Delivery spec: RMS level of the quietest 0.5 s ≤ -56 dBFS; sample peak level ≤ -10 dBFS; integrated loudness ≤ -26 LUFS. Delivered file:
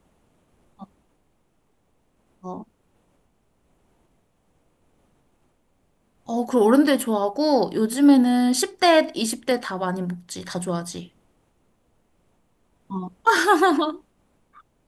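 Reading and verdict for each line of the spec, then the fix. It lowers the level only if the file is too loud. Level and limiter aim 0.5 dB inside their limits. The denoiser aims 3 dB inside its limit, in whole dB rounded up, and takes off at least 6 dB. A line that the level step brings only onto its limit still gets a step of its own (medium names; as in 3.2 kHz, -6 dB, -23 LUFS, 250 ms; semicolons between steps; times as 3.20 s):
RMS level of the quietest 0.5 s -66 dBFS: pass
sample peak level -5.5 dBFS: fail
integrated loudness -20.5 LUFS: fail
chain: trim -6 dB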